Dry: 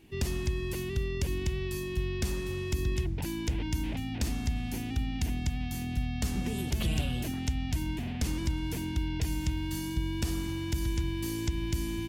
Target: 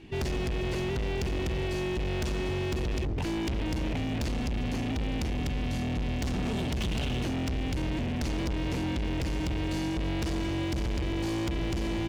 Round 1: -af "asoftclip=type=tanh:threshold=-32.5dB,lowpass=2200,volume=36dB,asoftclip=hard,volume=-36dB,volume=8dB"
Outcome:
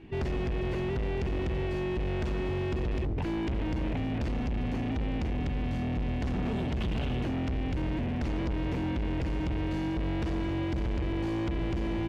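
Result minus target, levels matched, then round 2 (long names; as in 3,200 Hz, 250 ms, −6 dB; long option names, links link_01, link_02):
soft clipping: distortion +10 dB; 4,000 Hz band −6.5 dB
-af "asoftclip=type=tanh:threshold=-23.5dB,lowpass=4800,volume=36dB,asoftclip=hard,volume=-36dB,volume=8dB"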